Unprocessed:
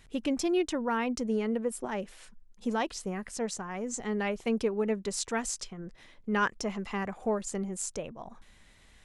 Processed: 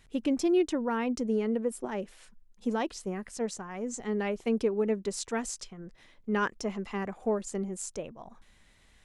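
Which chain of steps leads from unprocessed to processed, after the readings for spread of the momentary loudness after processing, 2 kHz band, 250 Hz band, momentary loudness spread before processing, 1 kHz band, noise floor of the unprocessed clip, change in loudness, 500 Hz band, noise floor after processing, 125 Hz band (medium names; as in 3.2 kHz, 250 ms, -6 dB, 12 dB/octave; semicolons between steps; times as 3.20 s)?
12 LU, -2.5 dB, +1.5 dB, 11 LU, -2.0 dB, -59 dBFS, +0.5 dB, +1.5 dB, -62 dBFS, 0.0 dB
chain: dynamic bell 330 Hz, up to +6 dB, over -40 dBFS, Q 0.93; trim -3 dB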